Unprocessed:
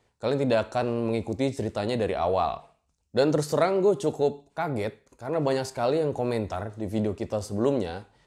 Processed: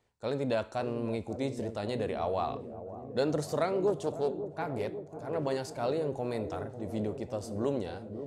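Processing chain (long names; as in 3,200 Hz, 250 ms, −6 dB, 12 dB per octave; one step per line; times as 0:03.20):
delay with a low-pass on its return 546 ms, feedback 71%, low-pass 600 Hz, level −9.5 dB
0:03.87–0:05.46: highs frequency-modulated by the lows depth 0.24 ms
level −7 dB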